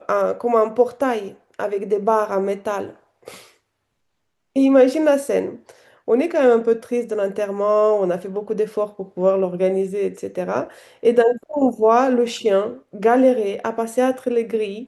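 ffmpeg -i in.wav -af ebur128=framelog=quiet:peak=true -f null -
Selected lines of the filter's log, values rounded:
Integrated loudness:
  I:         -19.5 LUFS
  Threshold: -29.9 LUFS
Loudness range:
  LRA:         4.4 LU
  Threshold: -40.1 LUFS
  LRA low:   -22.7 LUFS
  LRA high:  -18.3 LUFS
True peak:
  Peak:       -3.3 dBFS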